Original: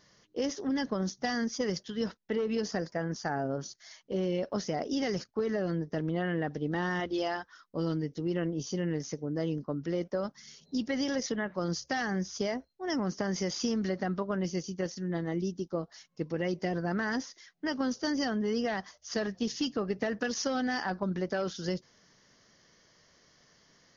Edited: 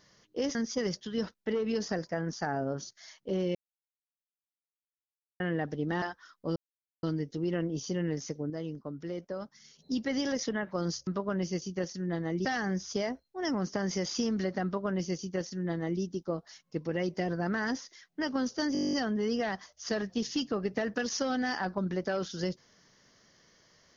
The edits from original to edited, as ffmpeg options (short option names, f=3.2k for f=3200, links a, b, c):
-filter_complex "[0:a]asplit=20[a][b][c][d][e][f][g][h][i][j][k][l][m][n][o][p][q][r][s][t];[a]atrim=end=0.552[u];[b]atrim=start=1.378:end=4.38,asetpts=PTS-STARTPTS,afade=t=out:st=2.998:d=0.004:c=hsin[v];[c]atrim=start=4.38:end=6.23,asetpts=PTS-STARTPTS,volume=0[w];[d]atrim=start=6.23:end=6.852,asetpts=PTS-STARTPTS,afade=t=in:d=0.004:c=hsin[x];[e]atrim=start=7.318:end=7.86,asetpts=PTS-STARTPTS,afade=t=out:st=0.538:d=0.004:c=hsin,apad=pad_dur=0.47[y];[f]atrim=start=7.86:end=9.332,asetpts=PTS-STARTPTS,afade=t=in:d=0.004:c=hsin[z];[g]atrim=start=9.328:end=10.622,asetpts=PTS-STARTPTS,volume=-5.5dB[aa];[h]atrim=start=10.618:end=11.902[ab];[i]atrim=start=14.088:end=15.472[ac];[j]atrim=start=11.898:end=18.202[ad];[k]atrim=start=18.178:end=18.202[ae];[l]atrim=start=18.178:end=18.202[af];[m]atrim=start=18.178:end=18.202[ag];[n]atrim=start=18.178:end=18.202[ah];[o]atrim=start=18.178:end=18.202[ai];[p]atrim=start=18.178:end=18.202[aj];[q]atrim=start=18.178:end=18.202[ak];[r]atrim=start=18.178:end=18.202[al];[s]atrim=start=18.178:end=18.202[am];[t]atrim=start=18.178[an];[v][w][x]concat=n=3:v=0:a=1[ao];[u][ao]acrossfade=d=0.004:c1=hsin:c2=hsin[ap];[y][z]concat=n=2:v=0:a=1[aq];[ap][aq]acrossfade=d=0.004:c1=hsin:c2=hsin[ar];[ar][aa]acrossfade=d=0.004:c1=hsin:c2=hsin[as];[as][ab]acrossfade=d=0.004:c1=hsin:c2=hsin[at];[at][ac]acrossfade=d=0.004:c1=hsin:c2=hsin[au];[au][ad]acrossfade=d=0.004:c1=hsin:c2=hsin[av];[av][ae]acrossfade=d=0.004:c1=hsin:c2=hsin[aw];[aw][af]acrossfade=d=0.004:c1=hsin:c2=hsin[ax];[ax][ag]acrossfade=d=0.004:c1=hsin:c2=hsin[ay];[ay][ah]acrossfade=d=0.004:c1=hsin:c2=hsin[az];[az][ai]acrossfade=d=0.004:c1=hsin:c2=hsin[ba];[ba][aj]acrossfade=d=0.004:c1=hsin:c2=hsin[bb];[bb][ak]acrossfade=d=0.004:c1=hsin:c2=hsin[bc];[bc][al]acrossfade=d=0.004:c1=hsin:c2=hsin[bd];[bd][am]acrossfade=d=0.004:c1=hsin:c2=hsin[be];[be][an]acrossfade=d=0.004:c1=hsin:c2=hsin"